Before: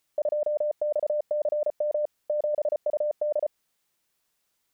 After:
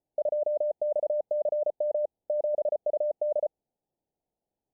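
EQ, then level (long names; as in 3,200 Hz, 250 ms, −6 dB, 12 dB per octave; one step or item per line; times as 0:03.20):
elliptic low-pass filter 820 Hz, stop band 40 dB
0.0 dB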